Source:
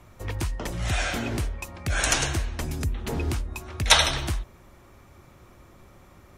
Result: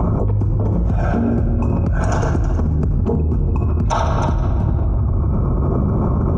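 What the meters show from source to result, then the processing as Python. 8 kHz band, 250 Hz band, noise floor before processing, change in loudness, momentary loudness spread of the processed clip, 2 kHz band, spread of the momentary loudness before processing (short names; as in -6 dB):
-12.0 dB, +16.0 dB, -53 dBFS, +7.5 dB, 1 LU, -6.0 dB, 15 LU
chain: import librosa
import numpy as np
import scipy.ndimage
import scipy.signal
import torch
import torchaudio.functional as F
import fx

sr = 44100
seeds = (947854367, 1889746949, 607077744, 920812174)

p1 = fx.envelope_sharpen(x, sr, power=1.5)
p2 = scipy.signal.sosfilt(scipy.signal.butter(2, 50.0, 'highpass', fs=sr, output='sos'), p1)
p3 = fx.band_shelf(p2, sr, hz=2700.0, db=-14.5, octaves=1.7)
p4 = fx.notch(p3, sr, hz=1900.0, q=5.7)
p5 = fx.rider(p4, sr, range_db=10, speed_s=0.5)
p6 = fx.spacing_loss(p5, sr, db_at_10k=33)
p7 = p6 + fx.echo_single(p6, sr, ms=319, db=-12.0, dry=0)
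p8 = fx.room_shoebox(p7, sr, seeds[0], volume_m3=2200.0, walls='mixed', distance_m=1.5)
p9 = fx.env_flatten(p8, sr, amount_pct=100)
y = F.gain(torch.from_numpy(p9), 3.5).numpy()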